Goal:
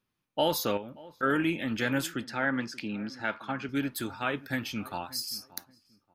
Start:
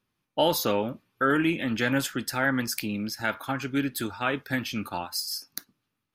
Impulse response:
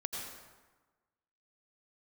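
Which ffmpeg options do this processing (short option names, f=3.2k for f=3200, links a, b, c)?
-filter_complex "[0:a]asplit=2[a][b];[b]adelay=580,lowpass=f=1.3k:p=1,volume=-18.5dB,asplit=2[c][d];[d]adelay=580,lowpass=f=1.3k:p=1,volume=0.26[e];[a][c][e]amix=inputs=3:normalize=0,asettb=1/sr,asplit=3[f][g][h];[f]atrim=end=0.774[i];[g]atrim=start=0.77:end=1.23,asetpts=PTS-STARTPTS,afade=t=in:d=0.004:c=qsin,afade=t=out:st=0.456:d=0.004:c=qsin,acompressor=threshold=-36dB:ratio=3[j];[h]atrim=start=1.226[k];[i][j]acrossfade=d=0.004:c1=hsin:c2=qsin[l];[l][k]acrossfade=d=0.004:c1=qsin:c2=hsin,asettb=1/sr,asplit=3[m][n][o];[m]atrim=end=2.244[p];[n]atrim=start=2.24:end=3.69,asetpts=PTS-STARTPTS,afade=t=in:d=0.004:c=qsin,afade=t=out:st=1.446:d=0.004:c=qsin,highpass=130,lowpass=3.8k[q];[o]atrim=start=3.686[r];[p][q]acrossfade=d=0.004:c1=hsin:c2=qsin[s];[s][r]acrossfade=d=0.004:c1=qsin:c2=hsin,volume=-3.5dB"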